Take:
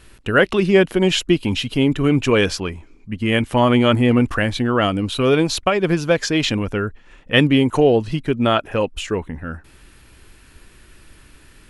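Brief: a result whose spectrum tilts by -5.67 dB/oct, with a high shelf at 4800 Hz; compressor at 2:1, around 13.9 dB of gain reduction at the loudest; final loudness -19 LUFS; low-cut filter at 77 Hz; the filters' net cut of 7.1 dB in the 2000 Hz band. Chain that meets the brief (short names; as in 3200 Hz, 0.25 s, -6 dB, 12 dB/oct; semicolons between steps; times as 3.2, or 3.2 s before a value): HPF 77 Hz; bell 2000 Hz -8.5 dB; high shelf 4800 Hz -6.5 dB; compressor 2:1, threshold -37 dBFS; gain +12.5 dB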